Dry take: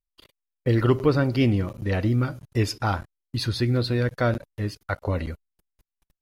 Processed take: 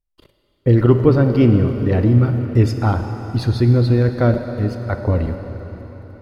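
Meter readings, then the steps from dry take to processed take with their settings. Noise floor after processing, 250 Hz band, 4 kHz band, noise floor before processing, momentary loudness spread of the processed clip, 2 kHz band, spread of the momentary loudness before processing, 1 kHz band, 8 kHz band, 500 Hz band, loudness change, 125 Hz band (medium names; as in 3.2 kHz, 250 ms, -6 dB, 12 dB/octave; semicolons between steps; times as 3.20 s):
-65 dBFS, +8.5 dB, -2.5 dB, under -85 dBFS, 11 LU, +0.5 dB, 11 LU, +3.5 dB, no reading, +7.5 dB, +8.0 dB, +9.5 dB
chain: tilt shelf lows +6.5 dB, about 1.1 kHz; plate-style reverb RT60 4.5 s, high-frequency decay 0.95×, DRR 6.5 dB; trim +2 dB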